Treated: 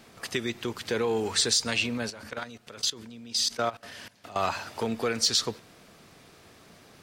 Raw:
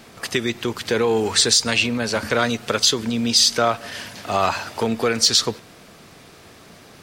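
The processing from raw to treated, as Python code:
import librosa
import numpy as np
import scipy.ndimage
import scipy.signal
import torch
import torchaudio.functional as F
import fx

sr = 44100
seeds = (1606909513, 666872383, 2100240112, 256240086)

y = fx.level_steps(x, sr, step_db=18, at=(2.1, 4.36))
y = F.gain(torch.from_numpy(y), -8.0).numpy()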